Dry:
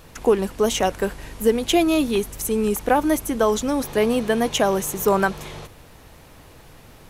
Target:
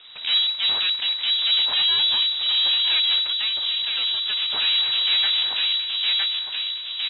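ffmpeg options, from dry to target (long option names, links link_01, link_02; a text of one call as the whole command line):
ffmpeg -i in.wav -filter_complex "[0:a]equalizer=frequency=130:width_type=o:width=0.61:gain=9,asplit=2[link_01][link_02];[link_02]adelay=962,lowpass=frequency=2100:poles=1,volume=-6dB,asplit=2[link_03][link_04];[link_04]adelay=962,lowpass=frequency=2100:poles=1,volume=0.5,asplit=2[link_05][link_06];[link_06]adelay=962,lowpass=frequency=2100:poles=1,volume=0.5,asplit=2[link_07][link_08];[link_08]adelay=962,lowpass=frequency=2100:poles=1,volume=0.5,asplit=2[link_09][link_10];[link_10]adelay=962,lowpass=frequency=2100:poles=1,volume=0.5,asplit=2[link_11][link_12];[link_12]adelay=962,lowpass=frequency=2100:poles=1,volume=0.5[link_13];[link_01][link_03][link_05][link_07][link_09][link_11][link_13]amix=inputs=7:normalize=0,aeval=exprs='abs(val(0))':channel_layout=same,equalizer=frequency=520:width_type=o:width=0.47:gain=6,asettb=1/sr,asplit=3[link_14][link_15][link_16];[link_14]atrim=end=3.244[link_17];[link_15]atrim=start=3.24:end=4.5,asetpts=PTS-STARTPTS,afade=type=in:duration=0.004:curve=qsin,afade=type=out:start_time=1.256:duration=0.004:curve=qsin,acompressor=threshold=-24dB:ratio=6[link_18];[link_16]atrim=start=4.496[link_19];[link_17][link_18]acrossfade=duration=0.004:curve1=hsin:curve2=qsin[link_20];[link_20][link_19]acrossfade=duration=0.004:curve1=qsin:curve2=hsin,asoftclip=type=tanh:threshold=-9.5dB,dynaudnorm=framelen=110:gausssize=3:maxgain=3dB,alimiter=limit=-13.5dB:level=0:latency=1:release=15,lowpass=frequency=3300:width_type=q:width=0.5098,lowpass=frequency=3300:width_type=q:width=0.6013,lowpass=frequency=3300:width_type=q:width=0.9,lowpass=frequency=3300:width_type=q:width=2.563,afreqshift=-3900" out.wav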